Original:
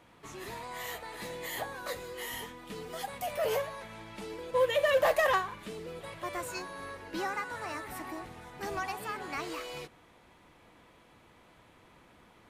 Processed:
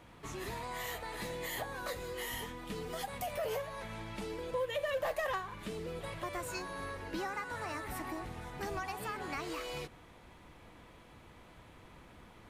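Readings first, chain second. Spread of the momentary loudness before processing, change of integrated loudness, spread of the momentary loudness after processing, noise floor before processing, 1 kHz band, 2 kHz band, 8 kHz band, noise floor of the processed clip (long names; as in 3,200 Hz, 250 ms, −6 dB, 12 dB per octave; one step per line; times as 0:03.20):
16 LU, −5.0 dB, 21 LU, −60 dBFS, −4.5 dB, −5.0 dB, −2.0 dB, −57 dBFS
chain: low-shelf EQ 110 Hz +10 dB
downward compressor 2.5 to 1, threshold −39 dBFS, peak gain reduction 12 dB
level +1.5 dB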